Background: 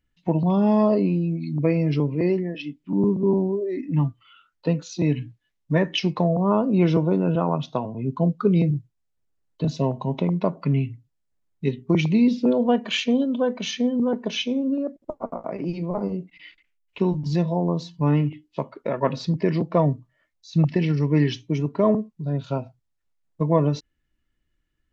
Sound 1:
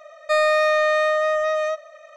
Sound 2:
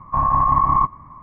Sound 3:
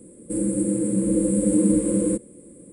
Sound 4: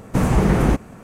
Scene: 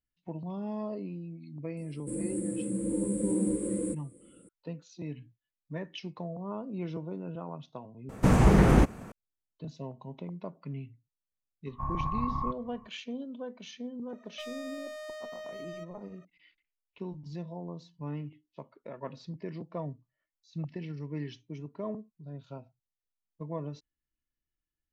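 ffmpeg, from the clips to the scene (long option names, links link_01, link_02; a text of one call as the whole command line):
ffmpeg -i bed.wav -i cue0.wav -i cue1.wav -i cue2.wav -i cue3.wav -filter_complex "[0:a]volume=-17.5dB[link_01];[4:a]acrossover=split=8900[link_02][link_03];[link_03]acompressor=threshold=-48dB:ratio=4:attack=1:release=60[link_04];[link_02][link_04]amix=inputs=2:normalize=0[link_05];[2:a]bass=frequency=250:gain=8,treble=frequency=4000:gain=11[link_06];[1:a]volume=24dB,asoftclip=hard,volume=-24dB[link_07];[link_01]asplit=2[link_08][link_09];[link_08]atrim=end=8.094[link_10];[link_05]atrim=end=1.03,asetpts=PTS-STARTPTS,volume=-3.5dB[link_11];[link_09]atrim=start=9.116[link_12];[3:a]atrim=end=2.72,asetpts=PTS-STARTPTS,volume=-10.5dB,afade=type=in:duration=0.004:curve=hsin,afade=type=out:start_time=2.716:duration=0.004:curve=hsin,adelay=1770[link_13];[link_06]atrim=end=1.22,asetpts=PTS-STARTPTS,volume=-18dB,afade=type=in:duration=0.004:curve=hsin,afade=type=out:start_time=1.216:duration=0.004:curve=hsin,adelay=11660[link_14];[link_07]atrim=end=2.16,asetpts=PTS-STARTPTS,volume=-17dB,afade=type=in:duration=0.004:curve=hsin,afade=type=out:start_time=2.156:duration=0.004:curve=hsin,adelay=14090[link_15];[link_10][link_11]acrossfade=duration=0.004:curve1=hsin:curve2=hsin[link_16];[link_16][link_12]acrossfade=duration=0.004:curve1=hsin:curve2=hsin[link_17];[link_17][link_13][link_14][link_15]amix=inputs=4:normalize=0" out.wav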